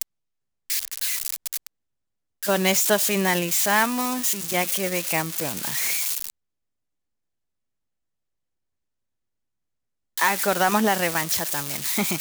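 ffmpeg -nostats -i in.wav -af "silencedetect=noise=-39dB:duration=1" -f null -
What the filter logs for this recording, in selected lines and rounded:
silence_start: 6.30
silence_end: 10.17 | silence_duration: 3.88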